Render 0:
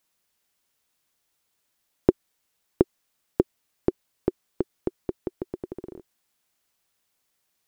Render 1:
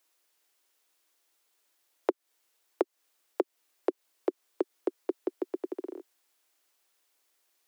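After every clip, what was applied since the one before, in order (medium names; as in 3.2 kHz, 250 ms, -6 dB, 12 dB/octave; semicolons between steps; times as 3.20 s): steep high-pass 280 Hz 72 dB/octave; compression 12:1, threshold -25 dBFS, peak gain reduction 13.5 dB; trim +1.5 dB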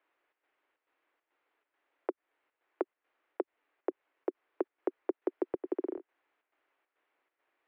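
square tremolo 2.3 Hz, depth 60%, duty 75%; low-pass 2.3 kHz 24 dB/octave; peak limiter -23.5 dBFS, peak gain reduction 9.5 dB; trim +3.5 dB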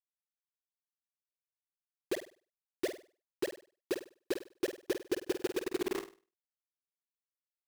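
phase dispersion highs, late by 129 ms, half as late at 710 Hz; bit crusher 6-bit; on a send: flutter echo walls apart 8.5 m, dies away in 0.35 s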